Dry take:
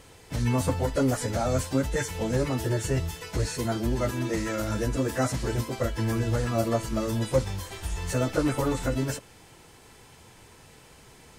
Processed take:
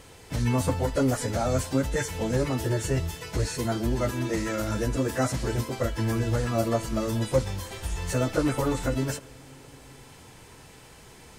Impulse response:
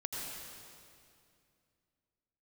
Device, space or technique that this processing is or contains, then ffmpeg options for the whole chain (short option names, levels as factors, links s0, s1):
compressed reverb return: -filter_complex "[0:a]asplit=2[s0][s1];[1:a]atrim=start_sample=2205[s2];[s1][s2]afir=irnorm=-1:irlink=0,acompressor=threshold=0.0126:ratio=6,volume=0.376[s3];[s0][s3]amix=inputs=2:normalize=0"